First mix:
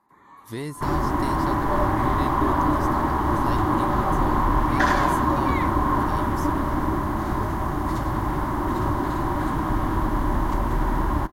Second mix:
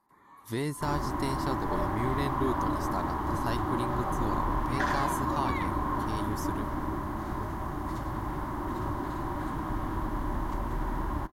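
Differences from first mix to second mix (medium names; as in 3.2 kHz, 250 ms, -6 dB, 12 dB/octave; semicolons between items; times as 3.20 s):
first sound -6.0 dB; second sound -9.0 dB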